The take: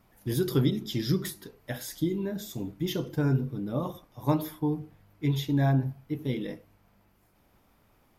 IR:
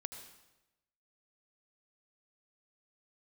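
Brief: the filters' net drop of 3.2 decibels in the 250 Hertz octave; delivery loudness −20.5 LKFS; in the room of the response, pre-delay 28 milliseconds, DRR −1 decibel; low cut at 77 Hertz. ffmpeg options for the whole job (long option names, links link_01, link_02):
-filter_complex "[0:a]highpass=77,equalizer=frequency=250:width_type=o:gain=-4.5,asplit=2[link_01][link_02];[1:a]atrim=start_sample=2205,adelay=28[link_03];[link_02][link_03]afir=irnorm=-1:irlink=0,volume=3.5dB[link_04];[link_01][link_04]amix=inputs=2:normalize=0,volume=8dB"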